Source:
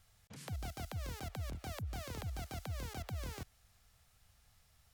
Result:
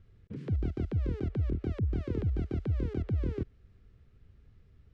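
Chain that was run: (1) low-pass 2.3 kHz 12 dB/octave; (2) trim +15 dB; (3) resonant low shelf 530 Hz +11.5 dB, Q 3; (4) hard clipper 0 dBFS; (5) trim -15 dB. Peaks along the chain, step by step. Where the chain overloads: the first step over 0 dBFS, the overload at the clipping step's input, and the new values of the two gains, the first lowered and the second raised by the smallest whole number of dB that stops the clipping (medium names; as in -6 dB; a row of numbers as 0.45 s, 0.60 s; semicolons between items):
-34.5 dBFS, -19.5 dBFS, -5.5 dBFS, -5.5 dBFS, -20.5 dBFS; nothing clips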